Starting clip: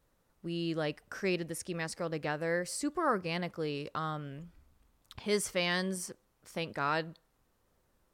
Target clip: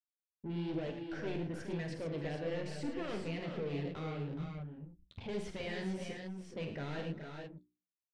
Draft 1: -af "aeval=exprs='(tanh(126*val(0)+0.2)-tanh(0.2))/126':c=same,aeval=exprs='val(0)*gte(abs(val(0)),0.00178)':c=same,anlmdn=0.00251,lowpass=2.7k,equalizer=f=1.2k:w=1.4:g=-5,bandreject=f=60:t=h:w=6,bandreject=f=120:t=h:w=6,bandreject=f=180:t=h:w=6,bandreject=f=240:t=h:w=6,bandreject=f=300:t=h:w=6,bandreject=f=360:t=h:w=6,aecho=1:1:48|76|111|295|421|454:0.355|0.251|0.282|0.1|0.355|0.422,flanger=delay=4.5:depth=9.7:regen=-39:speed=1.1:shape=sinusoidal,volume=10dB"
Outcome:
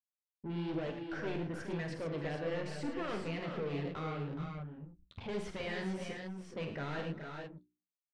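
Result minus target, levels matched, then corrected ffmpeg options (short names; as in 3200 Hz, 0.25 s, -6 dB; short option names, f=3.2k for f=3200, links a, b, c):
1000 Hz band +3.5 dB
-af "aeval=exprs='(tanh(126*val(0)+0.2)-tanh(0.2))/126':c=same,aeval=exprs='val(0)*gte(abs(val(0)),0.00178)':c=same,anlmdn=0.00251,lowpass=2.7k,equalizer=f=1.2k:w=1.4:g=-12,bandreject=f=60:t=h:w=6,bandreject=f=120:t=h:w=6,bandreject=f=180:t=h:w=6,bandreject=f=240:t=h:w=6,bandreject=f=300:t=h:w=6,bandreject=f=360:t=h:w=6,aecho=1:1:48|76|111|295|421|454:0.355|0.251|0.282|0.1|0.355|0.422,flanger=delay=4.5:depth=9.7:regen=-39:speed=1.1:shape=sinusoidal,volume=10dB"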